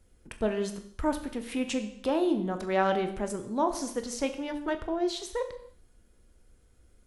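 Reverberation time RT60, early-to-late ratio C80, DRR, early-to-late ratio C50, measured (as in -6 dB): no single decay rate, 13.0 dB, 7.0 dB, 11.0 dB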